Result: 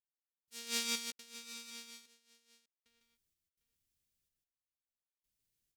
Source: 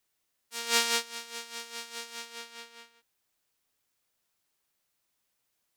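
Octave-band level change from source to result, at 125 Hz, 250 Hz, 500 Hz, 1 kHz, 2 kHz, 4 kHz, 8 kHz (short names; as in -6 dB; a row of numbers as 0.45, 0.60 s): n/a, -3.0 dB, -14.0 dB, -17.0 dB, -11.5 dB, -8.5 dB, -7.5 dB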